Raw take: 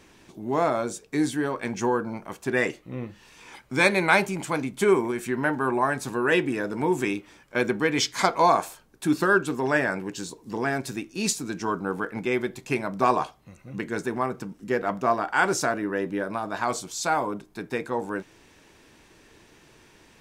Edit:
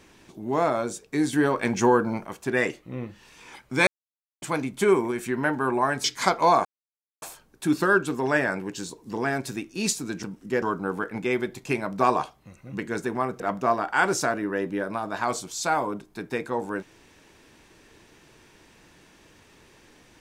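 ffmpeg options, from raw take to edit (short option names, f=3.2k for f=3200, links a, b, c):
-filter_complex "[0:a]asplit=10[a][b][c][d][e][f][g][h][i][j];[a]atrim=end=1.332[k];[b]atrim=start=1.328:end=2.252,asetpts=PTS-STARTPTS,volume=5dB[l];[c]atrim=start=2.248:end=3.87,asetpts=PTS-STARTPTS,afade=t=out:st=1.618:d=0.004:c=hsin[m];[d]atrim=start=3.87:end=4.42,asetpts=PTS-STARTPTS,volume=0[n];[e]atrim=start=4.42:end=6.042,asetpts=PTS-STARTPTS,afade=t=in:d=0.004:c=hsin[o];[f]atrim=start=8.008:end=8.62,asetpts=PTS-STARTPTS,afade=t=out:st=0.608:d=0.004:c=hsin,apad=pad_dur=0.57[p];[g]atrim=start=8.62:end=11.632,asetpts=PTS-STARTPTS,afade=t=in:d=0.004:c=hsin[q];[h]atrim=start=14.408:end=14.802[r];[i]atrim=start=11.628:end=14.412[s];[j]atrim=start=14.798[t];[k][l]acrossfade=d=0.004:c1=hsin:c2=hsin[u];[m][n][o]concat=n=3:v=0:a=1[v];[u][v]acrossfade=d=0.004:c1=hsin:c2=hsin[w];[p][q]concat=n=2:v=0:a=1[x];[w][x]acrossfade=d=0.004:c1=hsin:c2=hsin[y];[y][r]acrossfade=d=0.004:c1=hsin:c2=hsin[z];[z][s]acrossfade=d=0.004:c1=hsin:c2=hsin[aa];[aa][t]acrossfade=d=0.004:c1=hsin:c2=hsin"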